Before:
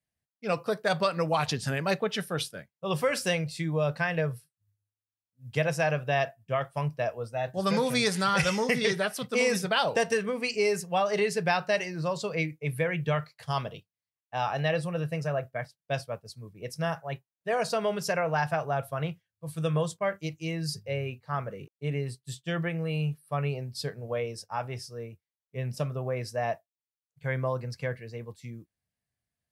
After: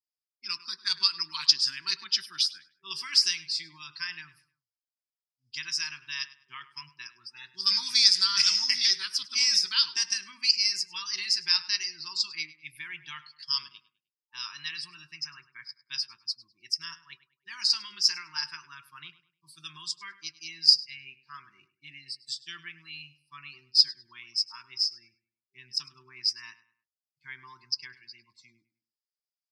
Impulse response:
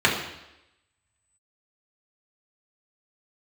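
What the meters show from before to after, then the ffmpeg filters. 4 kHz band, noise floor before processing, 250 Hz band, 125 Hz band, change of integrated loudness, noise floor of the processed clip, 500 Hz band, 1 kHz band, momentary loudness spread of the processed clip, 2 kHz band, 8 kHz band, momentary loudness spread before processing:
+12.5 dB, under -85 dBFS, under -25 dB, under -25 dB, +4.0 dB, under -85 dBFS, under -35 dB, -14.5 dB, 22 LU, -5.5 dB, +6.0 dB, 13 LU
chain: -filter_complex "[0:a]afftfilt=real='re*(1-between(b*sr/4096,390,890))':imag='im*(1-between(b*sr/4096,390,890))':win_size=4096:overlap=0.75,afftdn=nr=18:nf=-52,lowpass=f=5k:t=q:w=11,aderivative,asplit=2[a][b];[b]adelay=102,lowpass=f=2.8k:p=1,volume=-15.5dB,asplit=2[c][d];[d]adelay=102,lowpass=f=2.8k:p=1,volume=0.37,asplit=2[e][f];[f]adelay=102,lowpass=f=2.8k:p=1,volume=0.37[g];[c][e][g]amix=inputs=3:normalize=0[h];[a][h]amix=inputs=2:normalize=0,volume=4dB"

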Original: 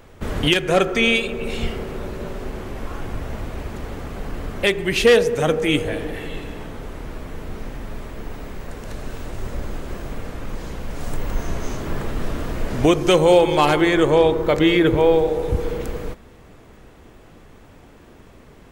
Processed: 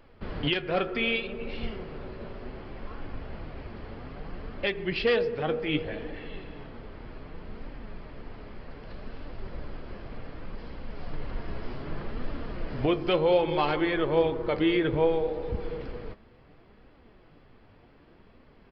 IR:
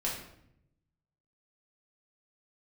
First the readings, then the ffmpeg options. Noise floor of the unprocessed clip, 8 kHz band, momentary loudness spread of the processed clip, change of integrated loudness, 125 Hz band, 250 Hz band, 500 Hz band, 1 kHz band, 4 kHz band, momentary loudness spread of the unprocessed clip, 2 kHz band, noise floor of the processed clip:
-46 dBFS, under -35 dB, 20 LU, -9.5 dB, -10.0 dB, -9.5 dB, -9.5 dB, -9.5 dB, -10.5 dB, 19 LU, -9.5 dB, -56 dBFS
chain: -af "bandreject=f=3.7k:w=15,flanger=delay=3.2:depth=6.5:regen=64:speed=0.65:shape=triangular,aresample=11025,aresample=44100,volume=-5.5dB"

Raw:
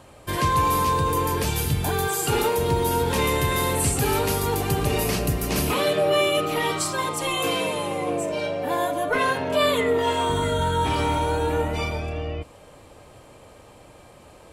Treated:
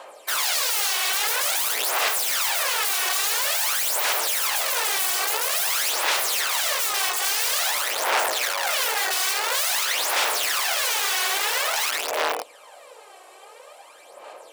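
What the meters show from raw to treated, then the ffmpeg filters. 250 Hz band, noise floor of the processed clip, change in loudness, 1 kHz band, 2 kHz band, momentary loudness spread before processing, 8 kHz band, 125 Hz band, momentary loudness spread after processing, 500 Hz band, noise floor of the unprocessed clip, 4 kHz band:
-22.0 dB, -48 dBFS, +2.0 dB, -3.0 dB, +4.5 dB, 6 LU, +7.5 dB, under -40 dB, 2 LU, -10.0 dB, -49 dBFS, +6.5 dB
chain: -af "aeval=exprs='(mod(15*val(0)+1,2)-1)/15':c=same,highpass=f=520:w=0.5412,highpass=f=520:w=1.3066,aphaser=in_gain=1:out_gain=1:delay=2.7:decay=0.61:speed=0.49:type=sinusoidal,volume=3dB"

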